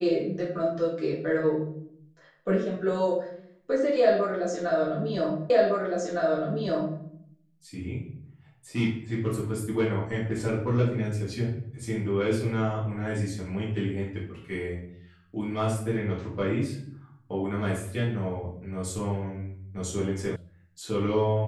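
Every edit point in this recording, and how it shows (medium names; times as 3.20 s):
5.50 s: repeat of the last 1.51 s
20.36 s: sound stops dead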